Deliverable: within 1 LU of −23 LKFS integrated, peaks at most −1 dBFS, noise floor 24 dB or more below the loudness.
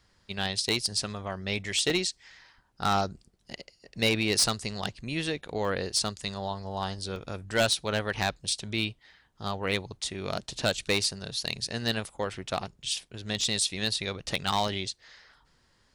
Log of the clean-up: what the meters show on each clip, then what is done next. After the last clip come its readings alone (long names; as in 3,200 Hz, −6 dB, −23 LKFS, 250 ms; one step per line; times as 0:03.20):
share of clipped samples 0.2%; peaks flattened at −17.5 dBFS; number of dropouts 8; longest dropout 1.4 ms; integrated loudness −29.5 LKFS; sample peak −17.5 dBFS; target loudness −23.0 LKFS
→ clipped peaks rebuilt −17.5 dBFS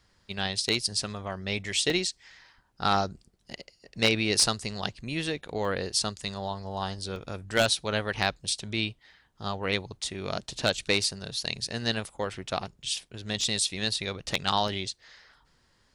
share of clipped samples 0.0%; number of dropouts 8; longest dropout 1.4 ms
→ repair the gap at 0:00.32/0:01.90/0:05.65/0:07.16/0:08.22/0:11.04/0:13.41/0:14.68, 1.4 ms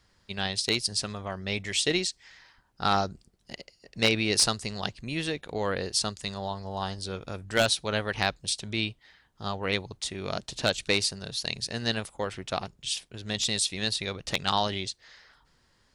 number of dropouts 0; integrated loudness −29.0 LKFS; sample peak −8.5 dBFS; target loudness −23.0 LKFS
→ level +6 dB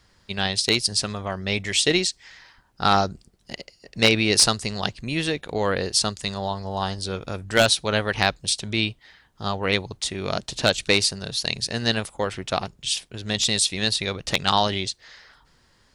integrated loudness −23.0 LKFS; sample peak −2.5 dBFS; background noise floor −61 dBFS